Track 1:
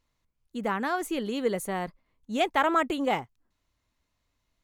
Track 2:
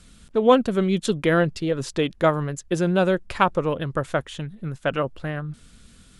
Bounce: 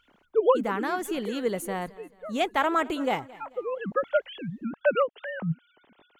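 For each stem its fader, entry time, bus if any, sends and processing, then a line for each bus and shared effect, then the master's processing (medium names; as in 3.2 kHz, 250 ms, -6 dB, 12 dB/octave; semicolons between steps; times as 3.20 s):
-0.5 dB, 0.00 s, no send, echo send -21 dB, peaking EQ 13 kHz +2 dB 0.28 oct
+0.5 dB, 0.00 s, no send, no echo send, formants replaced by sine waves; auto duck -22 dB, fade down 1.45 s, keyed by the first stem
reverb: none
echo: feedback delay 219 ms, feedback 40%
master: none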